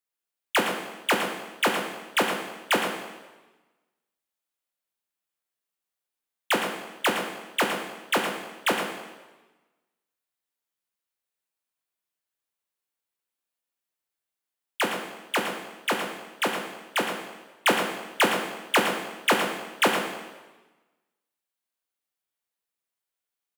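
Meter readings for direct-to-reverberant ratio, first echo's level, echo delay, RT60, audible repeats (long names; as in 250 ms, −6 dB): 1.5 dB, −9.0 dB, 114 ms, 1.2 s, 1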